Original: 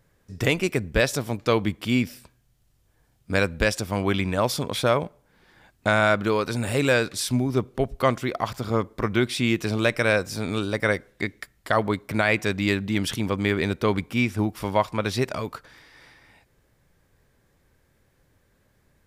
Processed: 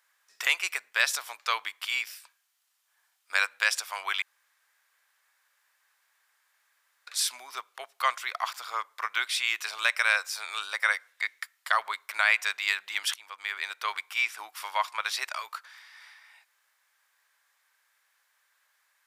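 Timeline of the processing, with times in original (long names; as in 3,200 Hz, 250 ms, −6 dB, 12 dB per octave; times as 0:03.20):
0:04.22–0:07.07: fill with room tone
0:13.14–0:13.95: fade in, from −16 dB
whole clip: high-pass filter 1,000 Hz 24 dB per octave; level +1 dB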